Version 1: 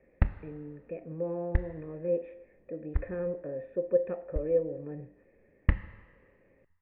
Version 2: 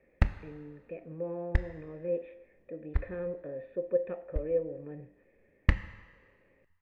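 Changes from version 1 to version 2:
speech −4.0 dB
master: remove high-frequency loss of the air 440 metres

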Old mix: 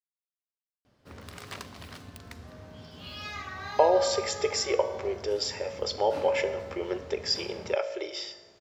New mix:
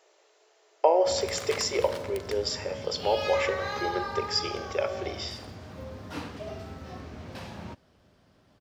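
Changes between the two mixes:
speech: entry −2.95 s
background +4.5 dB

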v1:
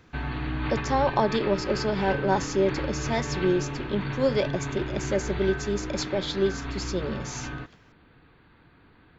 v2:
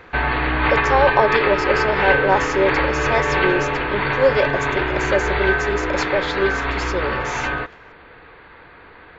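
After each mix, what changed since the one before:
background +9.0 dB
master: add octave-band graphic EQ 125/250/500/1,000/2,000 Hz −6/−6/+9/+5/+8 dB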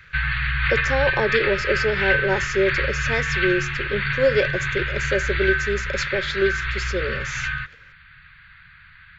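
background: add Chebyshev band-stop filter 150–1,200 Hz, order 3
master: add flat-topped bell 870 Hz −11 dB 1.2 octaves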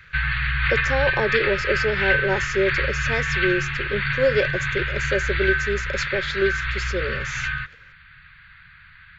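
speech: send −7.0 dB

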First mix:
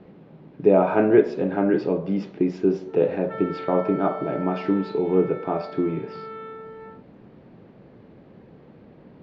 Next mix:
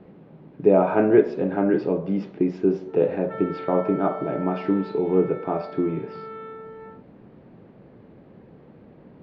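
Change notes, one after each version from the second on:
master: add high-shelf EQ 4,000 Hz −8.5 dB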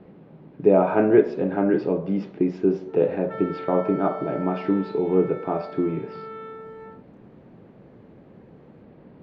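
background: remove low-pass filter 3,800 Hz 12 dB per octave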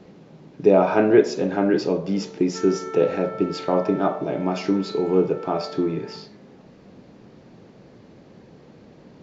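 speech: remove high-frequency loss of the air 480 metres
background: entry −0.75 s

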